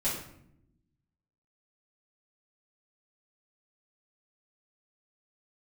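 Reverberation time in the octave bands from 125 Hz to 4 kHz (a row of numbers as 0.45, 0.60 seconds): 1.5, 1.4, 0.80, 0.65, 0.60, 0.45 seconds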